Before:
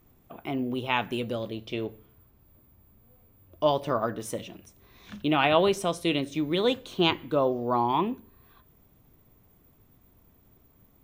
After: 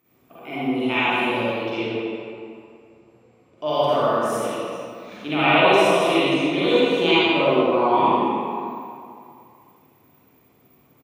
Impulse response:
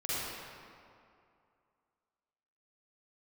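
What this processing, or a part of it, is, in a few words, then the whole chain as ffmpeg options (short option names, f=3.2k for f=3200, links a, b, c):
PA in a hall: -filter_complex "[0:a]asettb=1/sr,asplit=3[a][b][c];[a]atrim=end=1.524[d];[b]atrim=start=1.52:end=3.7,asetpts=PTS-STARTPTS,afade=t=in:d=0.004:c=qsin,afade=t=out:st=2.176:d=0.004:c=qsin,lowpass=f=8.8k:w=0.5412,lowpass=f=8.8k:w=1.3066[e];[c]atrim=start=3.696[f];[d][e]acrossfade=d=0.004:c1=hsin:c2=qsin[g];[g][f]acrossfade=d=0.004:c1=qsin:c2=hsin,highpass=200,equalizer=f=2.4k:t=o:w=0.31:g=7,aecho=1:1:86:0.501[h];[1:a]atrim=start_sample=2205[i];[h][i]afir=irnorm=-1:irlink=0"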